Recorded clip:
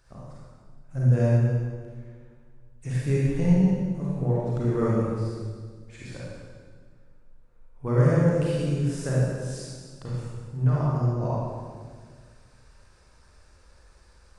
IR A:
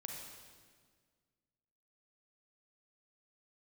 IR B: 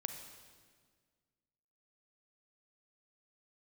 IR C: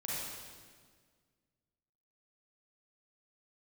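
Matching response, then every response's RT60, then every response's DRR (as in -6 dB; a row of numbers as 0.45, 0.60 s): C; 1.7, 1.7, 1.7 s; 0.0, 6.0, -7.0 dB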